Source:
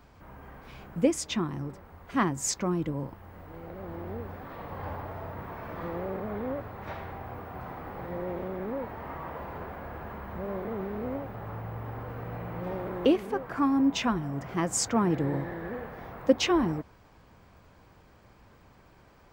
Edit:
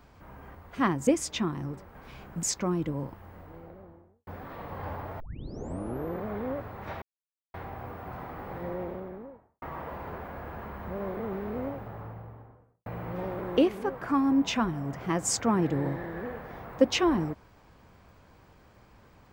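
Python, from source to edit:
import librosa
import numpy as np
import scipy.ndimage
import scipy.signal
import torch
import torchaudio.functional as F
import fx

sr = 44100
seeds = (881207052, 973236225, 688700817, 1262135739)

y = fx.studio_fade_out(x, sr, start_s=3.2, length_s=1.07)
y = fx.studio_fade_out(y, sr, start_s=8.1, length_s=1.0)
y = fx.studio_fade_out(y, sr, start_s=11.08, length_s=1.26)
y = fx.edit(y, sr, fx.swap(start_s=0.55, length_s=0.48, other_s=1.91, other_length_s=0.52),
    fx.tape_start(start_s=5.2, length_s=1.02),
    fx.insert_silence(at_s=7.02, length_s=0.52), tone=tone)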